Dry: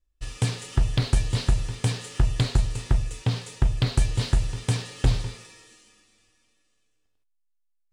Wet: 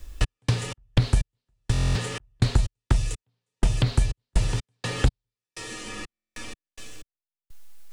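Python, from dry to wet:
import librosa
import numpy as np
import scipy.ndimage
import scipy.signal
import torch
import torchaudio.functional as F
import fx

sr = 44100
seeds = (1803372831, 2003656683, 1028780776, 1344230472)

y = fx.step_gate(x, sr, bpm=62, pattern='x.x.x..x', floor_db=-60.0, edge_ms=4.5)
y = fx.buffer_glitch(y, sr, at_s=(1.72, 6.13), block=1024, repeats=9)
y = fx.band_squash(y, sr, depth_pct=100)
y = y * 10.0 ** (3.0 / 20.0)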